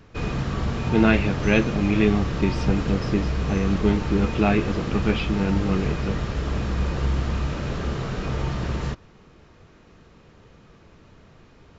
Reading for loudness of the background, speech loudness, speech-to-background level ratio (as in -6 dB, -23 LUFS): -27.5 LUFS, -24.0 LUFS, 3.5 dB